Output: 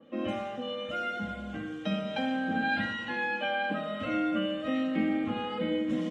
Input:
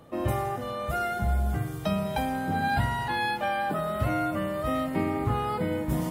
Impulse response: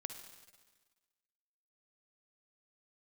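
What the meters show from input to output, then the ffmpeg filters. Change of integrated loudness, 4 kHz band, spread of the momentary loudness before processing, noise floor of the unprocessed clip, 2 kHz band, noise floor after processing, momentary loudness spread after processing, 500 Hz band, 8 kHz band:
−3.0 dB, +1.5 dB, 3 LU, −35 dBFS, +0.5 dB, −40 dBFS, 7 LU, −3.5 dB, below −10 dB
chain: -filter_complex "[0:a]highpass=frequency=120:width=0.5412,highpass=frequency=120:width=1.3066,equalizer=frequency=220:width_type=q:width=4:gain=8,equalizer=frequency=450:width_type=q:width=4:gain=5,equalizer=frequency=900:width_type=q:width=4:gain=-9,equalizer=frequency=1600:width_type=q:width=4:gain=3,equalizer=frequency=2900:width_type=q:width=4:gain=9,equalizer=frequency=4800:width_type=q:width=4:gain=-10,lowpass=frequency=5600:width=0.5412,lowpass=frequency=5600:width=1.3066,aecho=1:1:3.7:0.86[link_01];[1:a]atrim=start_sample=2205,afade=type=out:start_time=0.18:duration=0.01,atrim=end_sample=8379,asetrate=38808,aresample=44100[link_02];[link_01][link_02]afir=irnorm=-1:irlink=0,adynamicequalizer=threshold=0.0126:dfrequency=2300:dqfactor=0.7:tfrequency=2300:tqfactor=0.7:attack=5:release=100:ratio=0.375:range=2:mode=boostabove:tftype=highshelf,volume=-4.5dB"

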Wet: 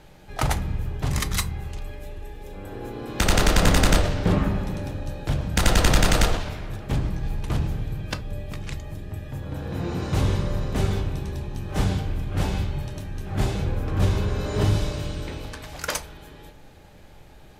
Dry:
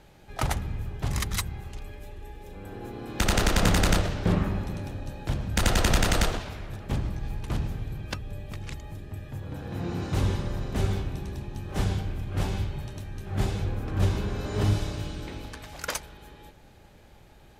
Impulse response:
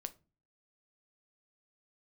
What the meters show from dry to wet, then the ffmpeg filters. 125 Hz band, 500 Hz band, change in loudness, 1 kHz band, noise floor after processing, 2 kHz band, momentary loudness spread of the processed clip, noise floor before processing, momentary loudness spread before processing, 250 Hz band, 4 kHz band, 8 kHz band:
+3.5 dB, +4.5 dB, +3.5 dB, +4.0 dB, −47 dBFS, +3.5 dB, 16 LU, −53 dBFS, 17 LU, +3.5 dB, +3.5 dB, +3.5 dB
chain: -filter_complex "[0:a]acontrast=85[link_01];[1:a]atrim=start_sample=2205[link_02];[link_01][link_02]afir=irnorm=-1:irlink=0"

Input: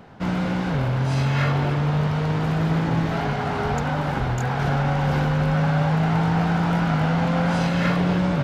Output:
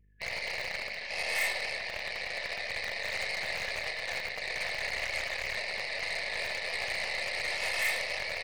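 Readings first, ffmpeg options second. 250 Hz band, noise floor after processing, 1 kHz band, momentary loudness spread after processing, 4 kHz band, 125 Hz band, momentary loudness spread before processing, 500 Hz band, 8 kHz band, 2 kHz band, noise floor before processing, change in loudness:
−36.0 dB, −40 dBFS, −17.0 dB, 6 LU, +1.0 dB, −36.0 dB, 4 LU, −13.0 dB, can't be measured, −1.0 dB, −25 dBFS, −10.5 dB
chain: -filter_complex "[0:a]afftfilt=real='re*lt(hypot(re,im),0.316)':imag='im*lt(hypot(re,im),0.316)':win_size=1024:overlap=0.75,bandreject=frequency=50:width_type=h:width=6,bandreject=frequency=100:width_type=h:width=6,bandreject=frequency=150:width_type=h:width=6,bandreject=frequency=200:width_type=h:width=6,bandreject=frequency=250:width_type=h:width=6,bandreject=frequency=300:width_type=h:width=6,bandreject=frequency=350:width_type=h:width=6,afftdn=noise_reduction=34:noise_floor=-45,lowpass=frequency=2300:width_type=q:width=3.3,equalizer=frequency=270:width_type=o:width=0.25:gain=-14.5,afftfilt=real='re*(1-between(b*sr/4096,230,1700))':imag='im*(1-between(b*sr/4096,230,1700))':win_size=4096:overlap=0.75,acrossover=split=180|800[link_01][link_02][link_03];[link_01]acrusher=bits=5:mix=0:aa=0.000001[link_04];[link_04][link_02][link_03]amix=inputs=3:normalize=0,aeval=exprs='val(0)+0.00562*(sin(2*PI*50*n/s)+sin(2*PI*2*50*n/s)/2+sin(2*PI*3*50*n/s)/3+sin(2*PI*4*50*n/s)/4+sin(2*PI*5*50*n/s)/5)':channel_layout=same,asoftclip=type=tanh:threshold=-14dB,aeval=exprs='0.178*(cos(1*acos(clip(val(0)/0.178,-1,1)))-cos(1*PI/2))+0.00794*(cos(3*acos(clip(val(0)/0.178,-1,1)))-cos(3*PI/2))+0.00224*(cos(4*acos(clip(val(0)/0.178,-1,1)))-cos(4*PI/2))+0.00631*(cos(5*acos(clip(val(0)/0.178,-1,1)))-cos(5*PI/2))+0.0398*(cos(8*acos(clip(val(0)/0.178,-1,1)))-cos(8*PI/2))':channel_layout=same,lowshelf=frequency=410:width_type=q:width=3:gain=-12,asplit=2[link_05][link_06];[link_06]aecho=0:1:77|154|231:0.168|0.0554|0.0183[link_07];[link_05][link_07]amix=inputs=2:normalize=0,volume=-6dB"

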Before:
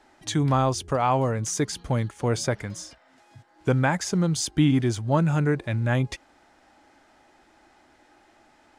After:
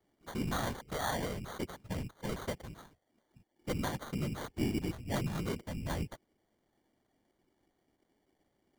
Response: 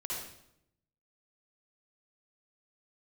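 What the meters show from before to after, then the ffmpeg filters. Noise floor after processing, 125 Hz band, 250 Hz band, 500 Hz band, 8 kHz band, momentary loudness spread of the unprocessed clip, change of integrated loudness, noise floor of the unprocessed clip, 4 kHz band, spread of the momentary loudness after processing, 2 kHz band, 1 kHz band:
−79 dBFS, −15.0 dB, −12.5 dB, −13.0 dB, −16.0 dB, 10 LU, −13.0 dB, −60 dBFS, −10.5 dB, 9 LU, −11.0 dB, −13.5 dB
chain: -filter_complex "[0:a]acrossover=split=320|640|3700[link_01][link_02][link_03][link_04];[link_03]acrusher=bits=6:mix=0:aa=0.000001[link_05];[link_01][link_02][link_05][link_04]amix=inputs=4:normalize=0,afftfilt=real='hypot(re,im)*cos(2*PI*random(0))':imag='hypot(re,im)*sin(2*PI*random(1))':win_size=512:overlap=0.75,acrusher=samples=17:mix=1:aa=0.000001,volume=-7dB"

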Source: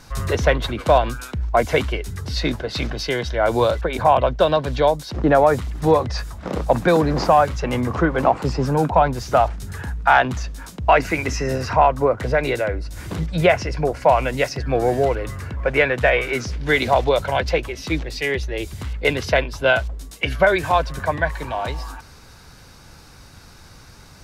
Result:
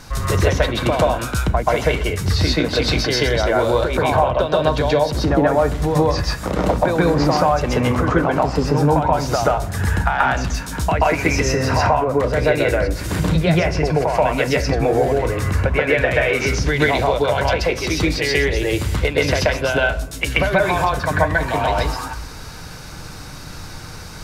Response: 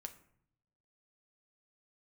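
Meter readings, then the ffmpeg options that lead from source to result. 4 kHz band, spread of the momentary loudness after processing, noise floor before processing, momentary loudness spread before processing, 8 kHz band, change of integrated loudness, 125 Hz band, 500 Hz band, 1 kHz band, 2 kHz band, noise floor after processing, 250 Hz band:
+4.5 dB, 6 LU, −45 dBFS, 10 LU, +7.0 dB, +2.0 dB, +5.0 dB, +1.0 dB, 0.0 dB, +2.0 dB, −34 dBFS, +4.0 dB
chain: -filter_complex "[0:a]acompressor=threshold=-24dB:ratio=6,asplit=2[link_01][link_02];[1:a]atrim=start_sample=2205,adelay=131[link_03];[link_02][link_03]afir=irnorm=-1:irlink=0,volume=8dB[link_04];[link_01][link_04]amix=inputs=2:normalize=0,volume=5.5dB"

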